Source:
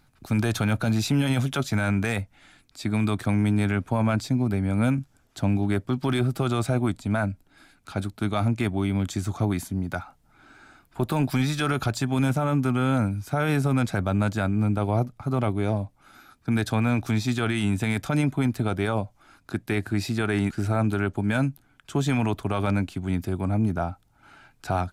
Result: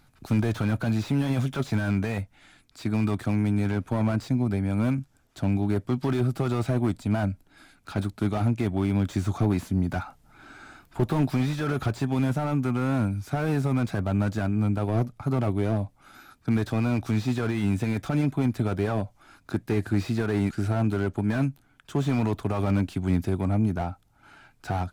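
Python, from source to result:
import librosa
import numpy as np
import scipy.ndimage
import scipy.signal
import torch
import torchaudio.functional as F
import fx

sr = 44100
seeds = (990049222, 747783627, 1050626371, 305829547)

y = fx.rider(x, sr, range_db=10, speed_s=0.5)
y = fx.wow_flutter(y, sr, seeds[0], rate_hz=2.1, depth_cents=26.0)
y = fx.slew_limit(y, sr, full_power_hz=39.0)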